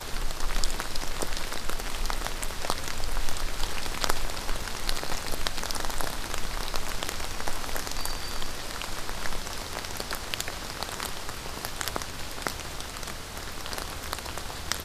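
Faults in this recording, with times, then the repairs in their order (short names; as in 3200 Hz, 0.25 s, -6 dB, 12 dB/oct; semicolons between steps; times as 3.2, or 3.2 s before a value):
4.62 gap 3.2 ms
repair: interpolate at 4.62, 3.2 ms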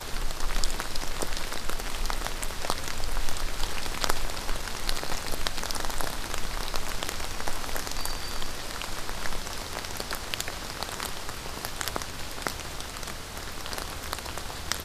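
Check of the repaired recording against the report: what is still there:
none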